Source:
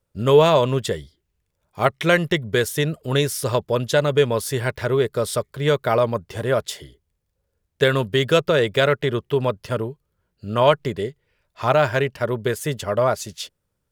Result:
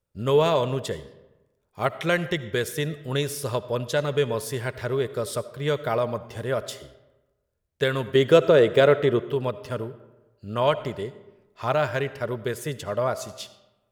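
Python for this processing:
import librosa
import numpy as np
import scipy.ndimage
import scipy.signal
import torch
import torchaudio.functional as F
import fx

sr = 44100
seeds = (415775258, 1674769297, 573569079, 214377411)

y = fx.peak_eq(x, sr, hz=420.0, db=8.5, octaves=2.7, at=(8.15, 9.29))
y = fx.rev_freeverb(y, sr, rt60_s=1.1, hf_ratio=0.6, predelay_ms=35, drr_db=14.5)
y = y * librosa.db_to_amplitude(-6.0)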